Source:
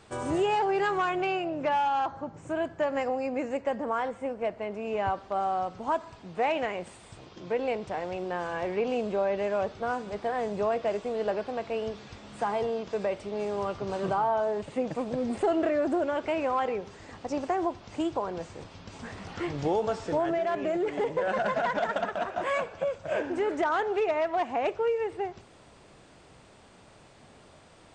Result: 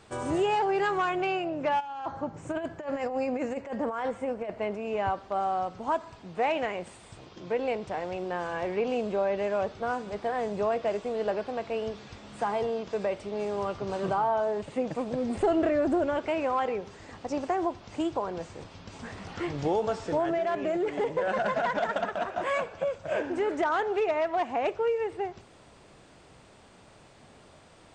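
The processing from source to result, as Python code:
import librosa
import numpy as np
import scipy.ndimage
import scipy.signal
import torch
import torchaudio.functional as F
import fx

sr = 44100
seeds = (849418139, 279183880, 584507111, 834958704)

y = fx.over_compress(x, sr, threshold_db=-31.0, ratio=-0.5, at=(1.79, 4.75), fade=0.02)
y = fx.low_shelf(y, sr, hz=140.0, db=11.5, at=(15.35, 16.19))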